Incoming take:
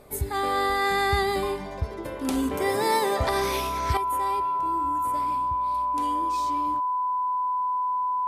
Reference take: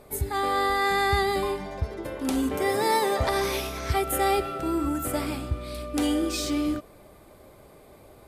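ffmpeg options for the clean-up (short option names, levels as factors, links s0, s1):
-af "bandreject=f=1000:w=30,asetnsamples=n=441:p=0,asendcmd='3.97 volume volume 11dB',volume=1"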